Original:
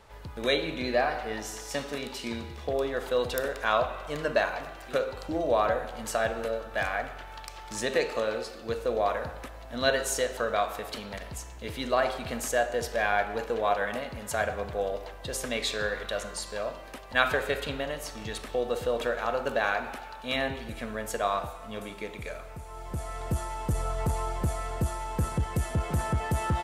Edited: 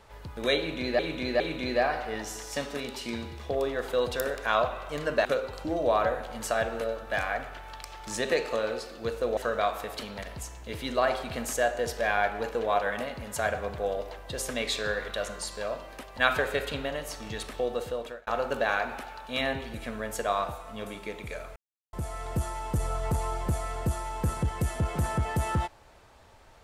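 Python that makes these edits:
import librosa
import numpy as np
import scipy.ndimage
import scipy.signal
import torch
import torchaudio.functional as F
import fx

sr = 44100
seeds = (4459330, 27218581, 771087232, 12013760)

y = fx.edit(x, sr, fx.repeat(start_s=0.58, length_s=0.41, count=3),
    fx.cut(start_s=4.43, length_s=0.46),
    fx.cut(start_s=9.01, length_s=1.31),
    fx.fade_out_span(start_s=18.4, length_s=0.82, curve='qsin'),
    fx.silence(start_s=22.51, length_s=0.37), tone=tone)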